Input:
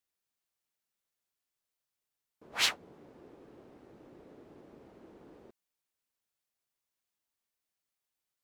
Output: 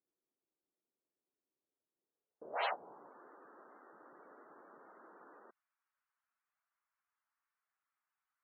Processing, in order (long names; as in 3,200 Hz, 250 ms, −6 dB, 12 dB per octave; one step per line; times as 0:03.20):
band-pass filter sweep 340 Hz → 1,300 Hz, 0:02.03–0:03.22
spectral peaks only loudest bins 64
level +10 dB